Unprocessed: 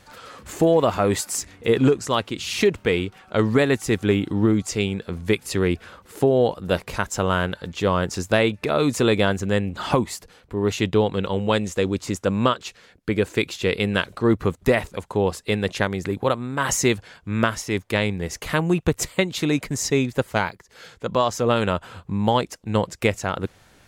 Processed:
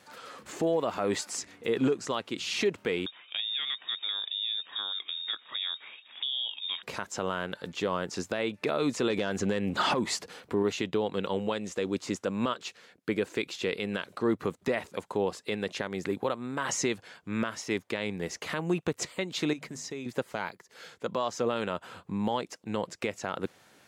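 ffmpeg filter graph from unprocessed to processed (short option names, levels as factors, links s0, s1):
-filter_complex "[0:a]asettb=1/sr,asplit=3[s0][s1][s2];[s0]atrim=end=3.064[s3];[s1]atrim=start=3.06:end=6.83,asetpts=PTS-STARTPTS,afade=t=in:d=0.004:c=qsin,afade=t=out:st=3.766:d=0.004:c=qsin,acompressor=threshold=0.0501:ratio=5:attack=3.2:release=140:knee=1:detection=peak,lowpass=f=3200:t=q:w=0.5098,lowpass=f=3200:t=q:w=0.6013,lowpass=f=3200:t=q:w=0.9,lowpass=f=3200:t=q:w=2.563,afreqshift=-3800[s4];[s2]atrim=start=6.826[s5];[s3][s4]acrossfade=d=0.004:c1=hsin:c2=qsin[s6];[s6][s5]acrossfade=d=0.004:c1=qsin:c2=hsin,asettb=1/sr,asplit=3[s7][s8][s9];[s7]atrim=end=9.104[s10];[s8]atrim=start=9.1:end=10.63,asetpts=PTS-STARTPTS,afade=t=in:d=0.004:c=qsin,afade=t=out:st=1.526:d=0.004:c=qsin,acompressor=threshold=0.0708:ratio=3:attack=3.2:release=140:knee=1:detection=peak,aeval=exprs='0.282*sin(PI/2*1.78*val(0)/0.282)':c=same[s11];[s9]atrim=start=10.626[s12];[s10][s11]acrossfade=d=0.004:c1=hsin:c2=qsin[s13];[s13][s12]acrossfade=d=0.004:c1=qsin:c2=hsin,asettb=1/sr,asplit=3[s14][s15][s16];[s14]atrim=end=19.534[s17];[s15]atrim=start=19.53:end=20.06,asetpts=PTS-STARTPTS,afade=t=in:d=0.004:c=qsin,afade=t=out:st=0.526:d=0.004:c=qsin,bandreject=f=50:t=h:w=6,bandreject=f=100:t=h:w=6,bandreject=f=150:t=h:w=6,bandreject=f=200:t=h:w=6,bandreject=f=250:t=h:w=6,acompressor=threshold=0.0316:ratio=6:attack=3.2:release=140:knee=1:detection=peak[s18];[s16]atrim=start=20.056[s19];[s17][s18]acrossfade=d=0.004:c1=hsin:c2=qsin[s20];[s20][s19]acrossfade=d=0.004:c1=qsin:c2=hsin,highpass=190,acrossover=split=7500[s21][s22];[s22]acompressor=threshold=0.00224:ratio=4:attack=1:release=60[s23];[s21][s23]amix=inputs=2:normalize=0,alimiter=limit=0.211:level=0:latency=1:release=165,volume=0.631"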